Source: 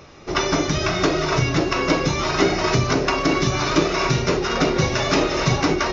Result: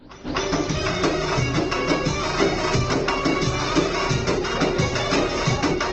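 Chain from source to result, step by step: tape start-up on the opening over 0.39 s; pre-echo 252 ms -19.5 dB; trim -2 dB; Opus 16 kbps 48 kHz

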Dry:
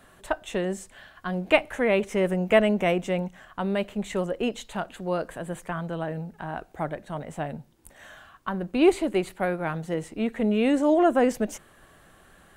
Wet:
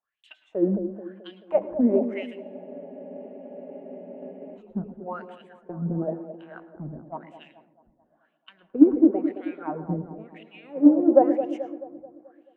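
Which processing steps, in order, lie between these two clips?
tilt EQ -3.5 dB/octave; peak limiter -12 dBFS, peak gain reduction 8.5 dB; compression, threshold -20 dBFS, peak gain reduction 5.5 dB; wah-wah 0.98 Hz 220–3000 Hz, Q 5.8; feedback echo behind a band-pass 217 ms, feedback 70%, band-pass 450 Hz, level -5.5 dB; on a send at -13 dB: reverberation RT60 0.45 s, pre-delay 107 ms; on the sum: spectral freeze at 2.44 s, 2.13 s; three bands expanded up and down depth 100%; trim +7 dB

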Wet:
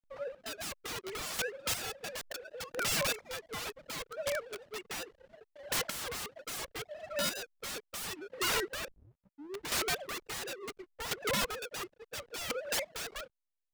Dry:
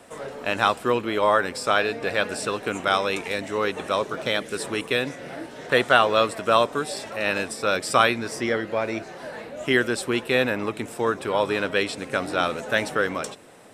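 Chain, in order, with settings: formants replaced by sine waves; 2.21–2.85 s: phase dispersion highs, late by 139 ms, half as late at 390 Hz; 4.01–4.56 s: compression 4:1, threshold -27 dBFS, peak gain reduction 4.5 dB; 8.88 s: tape start 1.03 s; 11.03–12.00 s: low-pass 1.9 kHz 12 dB/octave; integer overflow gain 22.5 dB; square tremolo 0.72 Hz, depth 60%, duty 25%; hysteresis with a dead band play -40 dBFS; warped record 78 rpm, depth 100 cents; trim -3.5 dB

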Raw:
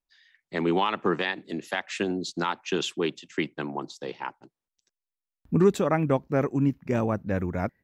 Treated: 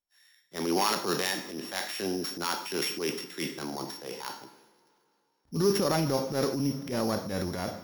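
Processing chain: sorted samples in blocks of 8 samples; bass shelf 150 Hz -8.5 dB; two-slope reverb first 0.57 s, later 3.4 s, from -21 dB, DRR 8.5 dB; transient shaper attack -9 dB, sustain +6 dB; trim -1.5 dB

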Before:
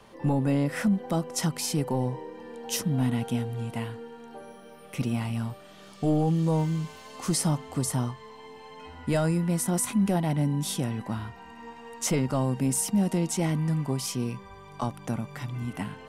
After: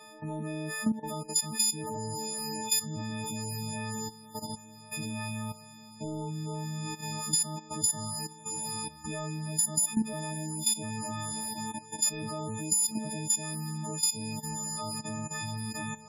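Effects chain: partials quantised in pitch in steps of 6 st; echo that smears into a reverb 731 ms, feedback 60%, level -15 dB; in parallel at 0 dB: peak limiter -16 dBFS, peak gain reduction 11.5 dB; on the sum: level held to a coarse grid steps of 15 dB; loudest bins only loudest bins 32; compression, threshold -18 dBFS, peak gain reduction 6 dB; trim -5.5 dB

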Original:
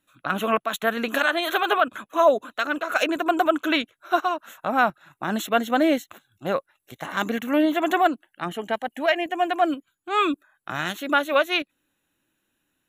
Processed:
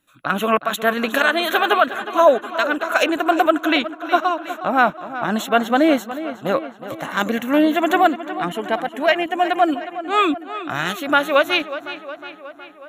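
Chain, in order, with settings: 3.65–5.98 s: treble shelf 7.4 kHz -5.5 dB; tape echo 365 ms, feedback 66%, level -12 dB, low-pass 4.2 kHz; trim +4.5 dB

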